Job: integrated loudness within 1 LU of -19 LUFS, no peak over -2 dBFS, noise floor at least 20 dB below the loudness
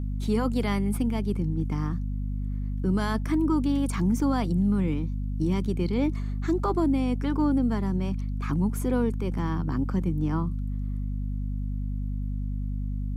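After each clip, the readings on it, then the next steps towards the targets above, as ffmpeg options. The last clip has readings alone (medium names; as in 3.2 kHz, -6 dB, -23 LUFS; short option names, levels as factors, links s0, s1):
hum 50 Hz; highest harmonic 250 Hz; hum level -27 dBFS; loudness -27.5 LUFS; peak level -14.0 dBFS; loudness target -19.0 LUFS
-> -af "bandreject=f=50:t=h:w=4,bandreject=f=100:t=h:w=4,bandreject=f=150:t=h:w=4,bandreject=f=200:t=h:w=4,bandreject=f=250:t=h:w=4"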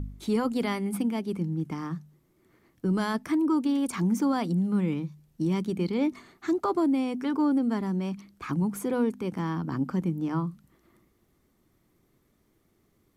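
hum not found; loudness -28.5 LUFS; peak level -16.0 dBFS; loudness target -19.0 LUFS
-> -af "volume=2.99"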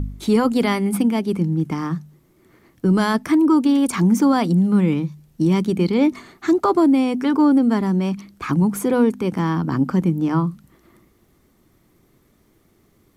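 loudness -19.0 LUFS; peak level -6.5 dBFS; noise floor -59 dBFS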